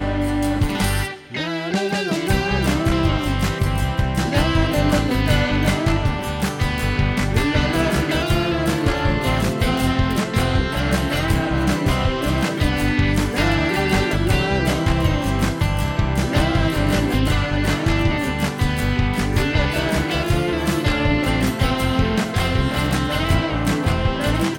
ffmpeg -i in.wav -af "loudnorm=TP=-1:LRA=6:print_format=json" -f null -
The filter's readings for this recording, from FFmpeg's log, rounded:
"input_i" : "-19.9",
"input_tp" : "-4.5",
"input_lra" : "0.9",
"input_thresh" : "-29.9",